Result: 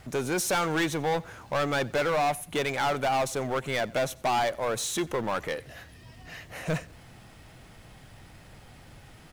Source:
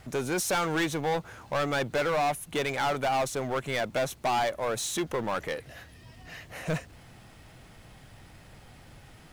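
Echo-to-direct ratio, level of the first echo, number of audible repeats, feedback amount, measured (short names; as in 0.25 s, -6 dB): -23.0 dB, -23.5 dB, 2, 33%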